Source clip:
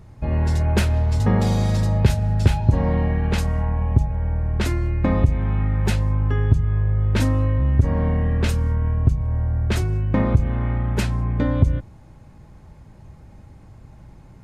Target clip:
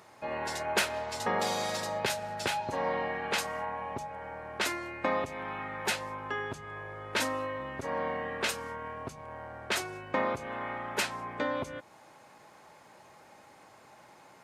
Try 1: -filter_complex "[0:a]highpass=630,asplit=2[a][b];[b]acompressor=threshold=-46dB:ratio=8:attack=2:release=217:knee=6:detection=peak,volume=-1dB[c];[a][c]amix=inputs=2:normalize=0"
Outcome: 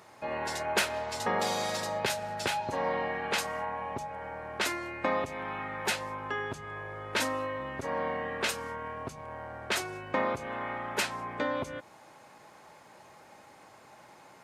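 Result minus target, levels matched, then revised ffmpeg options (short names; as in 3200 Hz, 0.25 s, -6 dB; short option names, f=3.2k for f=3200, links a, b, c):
compressor: peak gain reduction -9 dB
-filter_complex "[0:a]highpass=630,asplit=2[a][b];[b]acompressor=threshold=-56.5dB:ratio=8:attack=2:release=217:knee=6:detection=peak,volume=-1dB[c];[a][c]amix=inputs=2:normalize=0"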